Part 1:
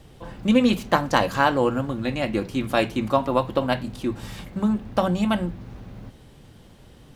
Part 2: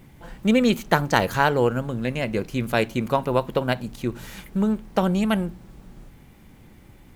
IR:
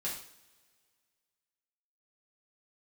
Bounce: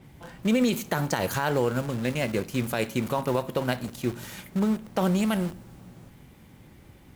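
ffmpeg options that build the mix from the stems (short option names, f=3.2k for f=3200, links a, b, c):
-filter_complex "[0:a]acompressor=threshold=-22dB:ratio=6,aeval=exprs='(mod(25.1*val(0)+1,2)-1)/25.1':c=same,volume=-11.5dB[a];[1:a]highpass=f=50:w=0.5412,highpass=f=50:w=1.3066,adynamicequalizer=threshold=0.00631:dfrequency=5400:dqfactor=0.7:tfrequency=5400:tqfactor=0.7:attack=5:release=100:ratio=0.375:range=3.5:mode=boostabove:tftype=highshelf,volume=-2.5dB,asplit=2[b][c];[c]volume=-17.5dB[d];[2:a]atrim=start_sample=2205[e];[d][e]afir=irnorm=-1:irlink=0[f];[a][b][f]amix=inputs=3:normalize=0,alimiter=limit=-14dB:level=0:latency=1:release=41"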